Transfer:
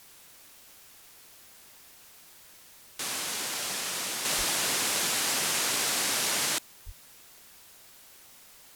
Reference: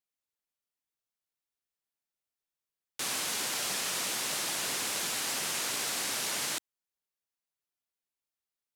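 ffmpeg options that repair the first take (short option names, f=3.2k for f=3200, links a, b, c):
-filter_complex "[0:a]asplit=3[a][b][c];[a]afade=t=out:st=4.37:d=0.02[d];[b]highpass=f=140:w=0.5412,highpass=f=140:w=1.3066,afade=t=in:st=4.37:d=0.02,afade=t=out:st=4.49:d=0.02[e];[c]afade=t=in:st=4.49:d=0.02[f];[d][e][f]amix=inputs=3:normalize=0,asplit=3[g][h][i];[g]afade=t=out:st=6.85:d=0.02[j];[h]highpass=f=140:w=0.5412,highpass=f=140:w=1.3066,afade=t=in:st=6.85:d=0.02,afade=t=out:st=6.97:d=0.02[k];[i]afade=t=in:st=6.97:d=0.02[l];[j][k][l]amix=inputs=3:normalize=0,afwtdn=0.0022,asetnsamples=n=441:p=0,asendcmd='4.25 volume volume -5dB',volume=0dB"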